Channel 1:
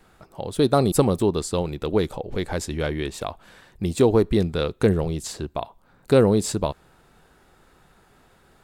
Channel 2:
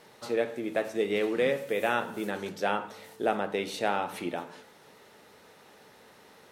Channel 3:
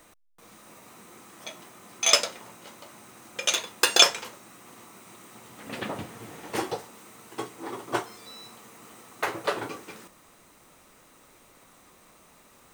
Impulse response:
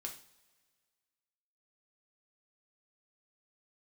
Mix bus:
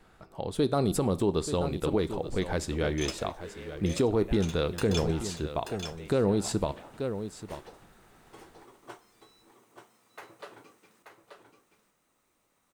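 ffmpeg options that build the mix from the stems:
-filter_complex "[0:a]highshelf=f=8.2k:g=-7,volume=-5dB,asplit=3[a][b][c];[b]volume=-7dB[d];[c]volume=-11.5dB[e];[1:a]adelay=2450,volume=-17.5dB[f];[2:a]adelay=950,volume=-18dB,asplit=2[g][h];[h]volume=-6.5dB[i];[3:a]atrim=start_sample=2205[j];[d][j]afir=irnorm=-1:irlink=0[k];[e][i]amix=inputs=2:normalize=0,aecho=0:1:882:1[l];[a][f][g][k][l]amix=inputs=5:normalize=0,alimiter=limit=-16.5dB:level=0:latency=1:release=114"

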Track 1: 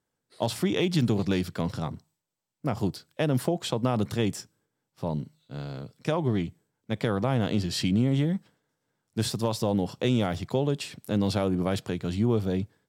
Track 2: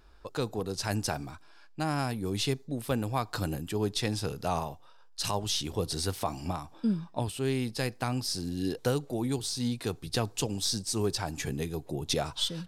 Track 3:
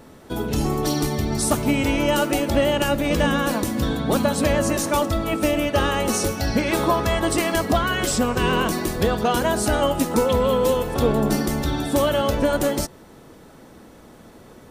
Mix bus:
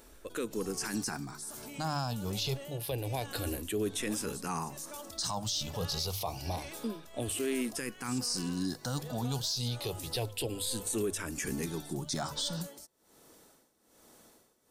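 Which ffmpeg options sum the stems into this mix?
-filter_complex "[1:a]highshelf=f=4.2k:g=7.5,bandreject=f=50:t=h:w=6,bandreject=f=100:t=h:w=6,bandreject=f=150:t=h:w=6,asplit=2[a][b];[b]afreqshift=-0.28[c];[a][c]amix=inputs=2:normalize=1,volume=1dB[d];[2:a]alimiter=limit=-17dB:level=0:latency=1:release=51,bass=f=250:g=-8,treble=f=4k:g=13,volume=-12dB,tremolo=f=1.2:d=0.85,acompressor=threshold=-55dB:ratio=1.5,volume=0dB[e];[d][e]amix=inputs=2:normalize=0,alimiter=level_in=0.5dB:limit=-24dB:level=0:latency=1:release=13,volume=-0.5dB"

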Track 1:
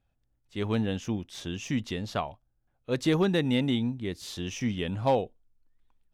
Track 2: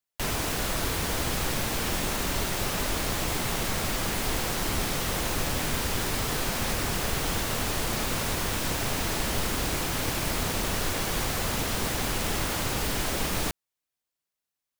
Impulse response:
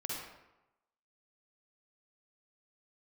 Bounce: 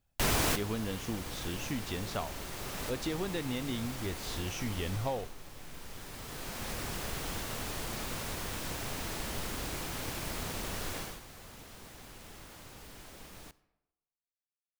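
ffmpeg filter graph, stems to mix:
-filter_complex "[0:a]acompressor=threshold=-27dB:ratio=6,asubboost=boost=9.5:cutoff=54,volume=-3dB,asplit=2[a][b];[1:a]afade=t=out:st=4.89:d=0.43:silence=0.316228,afade=t=out:st=10.97:d=0.23:silence=0.237137,asplit=2[c][d];[d]volume=-18.5dB[e];[b]apad=whole_len=652566[f];[c][f]sidechaincompress=threshold=-53dB:ratio=8:attack=16:release=947[g];[2:a]atrim=start_sample=2205[h];[e][h]afir=irnorm=-1:irlink=0[i];[a][g][i]amix=inputs=3:normalize=0"

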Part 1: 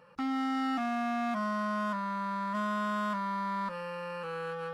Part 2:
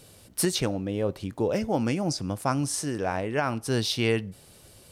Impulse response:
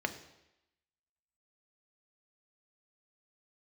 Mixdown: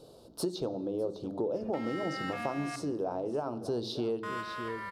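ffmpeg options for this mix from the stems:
-filter_complex "[0:a]highpass=1.3k,adelay=1550,volume=2.5dB,asplit=3[a][b][c];[a]atrim=end=2.76,asetpts=PTS-STARTPTS,afade=t=out:st=2.756:d=0.004:c=hsin[d];[b]atrim=start=2.76:end=4.23,asetpts=PTS-STARTPTS,volume=0[e];[c]atrim=start=4.23,asetpts=PTS-STARTPTS,afade=t=in:d=0.004:c=hsin[f];[d][e][f]concat=n=3:v=0:a=1,asplit=2[g][h];[h]volume=-6dB[i];[1:a]firequalizer=gain_entry='entry(100,0);entry(200,4);entry(340,8);entry(1300,-1);entry(1900,-25);entry(3700,1);entry(8000,-11)':delay=0.05:min_phase=1,volume=-6dB,asplit=4[j][k][l][m];[k]volume=-7.5dB[n];[l]volume=-13dB[o];[m]apad=whole_len=277175[p];[g][p]sidechaingate=range=-33dB:threshold=-49dB:ratio=16:detection=peak[q];[2:a]atrim=start_sample=2205[r];[i][n]amix=inputs=2:normalize=0[s];[s][r]afir=irnorm=-1:irlink=0[t];[o]aecho=0:1:604:1[u];[q][j][t][u]amix=inputs=4:normalize=0,acompressor=threshold=-33dB:ratio=3"

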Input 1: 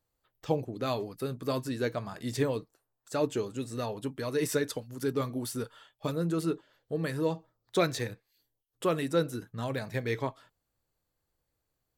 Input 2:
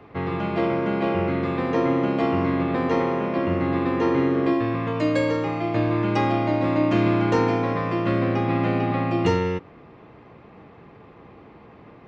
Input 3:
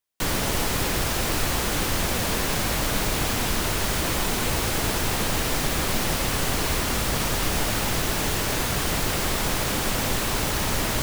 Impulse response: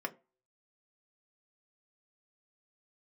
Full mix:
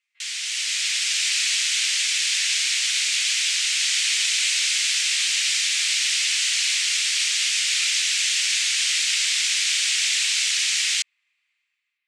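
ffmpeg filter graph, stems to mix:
-filter_complex "[0:a]flanger=delay=18.5:depth=5:speed=0.21,volume=-0.5dB[a];[1:a]volume=-17dB[b];[2:a]volume=1dB[c];[a][b][c]amix=inputs=3:normalize=0,dynaudnorm=f=100:g=11:m=11.5dB,asuperpass=centerf=4400:order=8:qfactor=0.7"

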